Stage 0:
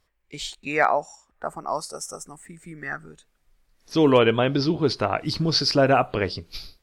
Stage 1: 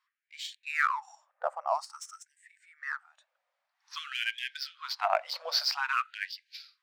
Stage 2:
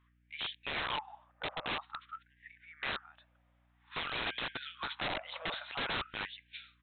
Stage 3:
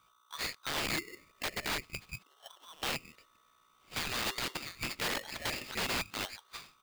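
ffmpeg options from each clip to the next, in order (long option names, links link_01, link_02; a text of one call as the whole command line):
ffmpeg -i in.wav -af "tiltshelf=frequency=1300:gain=3.5,adynamicsmooth=sensitivity=6.5:basefreq=4700,afftfilt=real='re*gte(b*sr/1024,480*pow(1600/480,0.5+0.5*sin(2*PI*0.51*pts/sr)))':imag='im*gte(b*sr/1024,480*pow(1600/480,0.5+0.5*sin(2*PI*0.51*pts/sr)))':win_size=1024:overlap=0.75,volume=-2.5dB" out.wav
ffmpeg -i in.wav -af "acompressor=threshold=-30dB:ratio=16,aeval=exprs='val(0)+0.0002*(sin(2*PI*60*n/s)+sin(2*PI*2*60*n/s)/2+sin(2*PI*3*60*n/s)/3+sin(2*PI*4*60*n/s)/4+sin(2*PI*5*60*n/s)/5)':channel_layout=same,aresample=8000,aeval=exprs='(mod(53.1*val(0)+1,2)-1)/53.1':channel_layout=same,aresample=44100,volume=4.5dB" out.wav
ffmpeg -i in.wav -af "aeval=exprs='val(0)*sgn(sin(2*PI*1200*n/s))':channel_layout=same,volume=2dB" out.wav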